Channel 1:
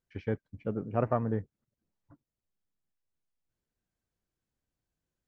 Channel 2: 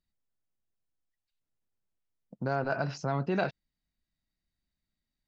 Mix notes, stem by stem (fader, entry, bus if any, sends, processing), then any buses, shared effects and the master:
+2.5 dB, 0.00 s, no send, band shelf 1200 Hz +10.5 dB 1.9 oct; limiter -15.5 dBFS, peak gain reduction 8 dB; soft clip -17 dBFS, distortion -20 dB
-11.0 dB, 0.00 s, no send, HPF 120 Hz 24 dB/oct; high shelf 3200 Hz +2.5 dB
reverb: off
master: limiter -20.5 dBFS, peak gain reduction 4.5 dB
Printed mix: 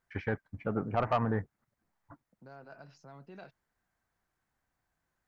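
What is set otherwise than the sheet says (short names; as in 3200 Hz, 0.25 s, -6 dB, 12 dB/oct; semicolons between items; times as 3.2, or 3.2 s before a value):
stem 1: missing limiter -15.5 dBFS, peak gain reduction 8 dB; stem 2 -11.0 dB -> -20.5 dB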